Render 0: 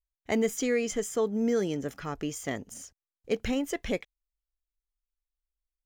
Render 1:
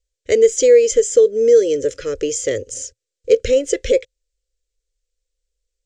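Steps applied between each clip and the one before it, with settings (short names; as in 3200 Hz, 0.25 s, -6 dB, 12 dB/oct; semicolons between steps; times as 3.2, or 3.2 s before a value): EQ curve 110 Hz 0 dB, 180 Hz -23 dB, 520 Hz +14 dB, 780 Hz -29 dB, 1500 Hz -6 dB, 7700 Hz +6 dB, 13000 Hz -27 dB; in parallel at +1.5 dB: compressor, threshold -26 dBFS, peak gain reduction 11.5 dB; on the sum: gain +5 dB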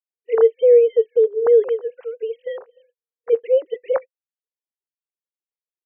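sine-wave speech; in parallel at -3 dB: limiter -13 dBFS, peak gain reduction 11.5 dB; on the sum: gain -5 dB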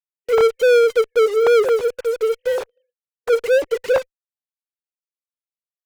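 sample leveller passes 3; in parallel at -6.5 dB: fuzz box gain 41 dB, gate -41 dBFS; on the sum: gain -6.5 dB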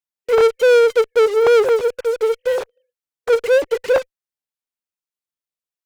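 Doppler distortion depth 0.23 ms; gain +1.5 dB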